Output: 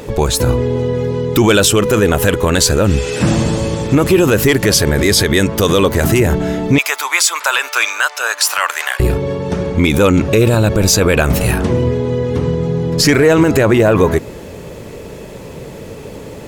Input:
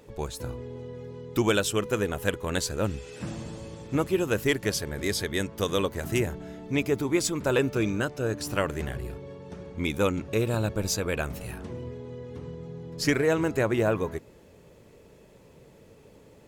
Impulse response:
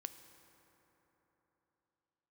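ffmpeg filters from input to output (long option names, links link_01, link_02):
-filter_complex "[0:a]asettb=1/sr,asplit=3[link_01][link_02][link_03];[link_01]atrim=end=6.784[link_04];[link_02]atrim=start=6.78:end=9,asetpts=PTS-STARTPTS,afade=type=in:duration=0.004:curve=qsin,afade=type=out:start_time=2.216:duration=0.004:curve=qsin,highpass=frequency=920:width=0.5412,highpass=frequency=920:width=1.3066[link_05];[link_03]atrim=start=8.996[link_06];[link_04][link_05]acrossfade=duration=0.004:curve1=hsin:curve2=qsin[link_07];[link_07][link_06]acrossfade=duration=0.004:curve1=qsin:curve2=hsin,asoftclip=type=tanh:threshold=-12dB,alimiter=level_in=24dB:limit=-1dB:release=50:level=0:latency=1,volume=-1dB"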